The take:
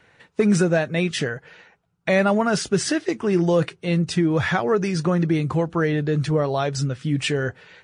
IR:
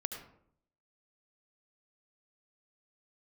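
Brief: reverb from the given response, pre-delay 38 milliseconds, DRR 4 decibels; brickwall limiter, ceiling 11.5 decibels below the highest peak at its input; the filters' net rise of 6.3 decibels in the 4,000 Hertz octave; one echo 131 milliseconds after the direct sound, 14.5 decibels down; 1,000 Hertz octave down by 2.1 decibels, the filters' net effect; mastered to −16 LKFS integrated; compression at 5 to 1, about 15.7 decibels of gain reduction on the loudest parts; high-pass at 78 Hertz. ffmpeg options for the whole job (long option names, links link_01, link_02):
-filter_complex "[0:a]highpass=78,equalizer=frequency=1000:width_type=o:gain=-3.5,equalizer=frequency=4000:width_type=o:gain=8.5,acompressor=threshold=-33dB:ratio=5,alimiter=level_in=4dB:limit=-24dB:level=0:latency=1,volume=-4dB,aecho=1:1:131:0.188,asplit=2[link_01][link_02];[1:a]atrim=start_sample=2205,adelay=38[link_03];[link_02][link_03]afir=irnorm=-1:irlink=0,volume=-4.5dB[link_04];[link_01][link_04]amix=inputs=2:normalize=0,volume=20dB"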